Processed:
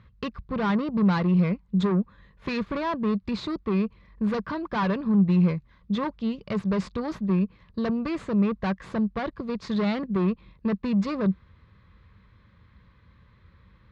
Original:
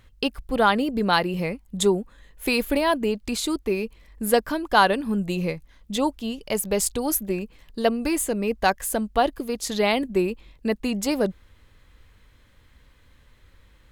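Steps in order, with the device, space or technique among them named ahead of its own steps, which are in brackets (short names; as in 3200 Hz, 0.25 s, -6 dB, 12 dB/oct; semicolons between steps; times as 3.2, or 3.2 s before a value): guitar amplifier (tube stage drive 25 dB, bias 0.55; tone controls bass +9 dB, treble 0 dB; speaker cabinet 80–4100 Hz, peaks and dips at 190 Hz +7 dB, 270 Hz -6 dB, 740 Hz -6 dB, 1100 Hz +8 dB, 3000 Hz -7 dB)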